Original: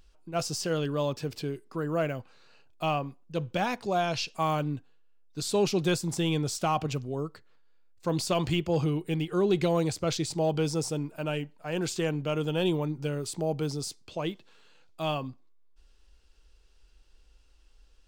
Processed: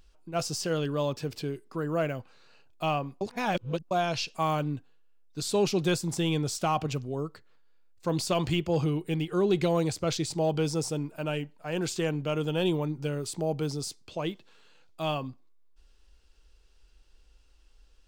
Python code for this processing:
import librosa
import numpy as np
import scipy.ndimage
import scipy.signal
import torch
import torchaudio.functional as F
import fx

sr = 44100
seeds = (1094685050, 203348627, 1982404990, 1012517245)

y = fx.edit(x, sr, fx.reverse_span(start_s=3.21, length_s=0.7), tone=tone)